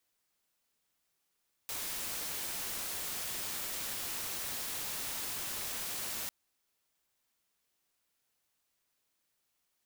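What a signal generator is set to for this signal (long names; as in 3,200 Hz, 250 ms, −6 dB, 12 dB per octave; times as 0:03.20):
noise white, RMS −38.5 dBFS 4.60 s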